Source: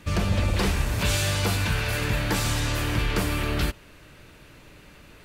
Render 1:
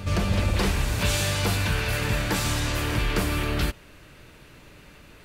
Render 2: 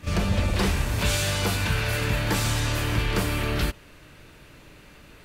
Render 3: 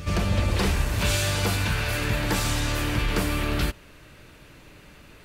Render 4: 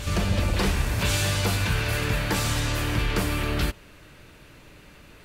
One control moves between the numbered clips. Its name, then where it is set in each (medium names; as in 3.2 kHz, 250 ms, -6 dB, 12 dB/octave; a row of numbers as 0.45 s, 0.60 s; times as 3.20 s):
reverse echo, time: 258 ms, 36 ms, 78 ms, 1064 ms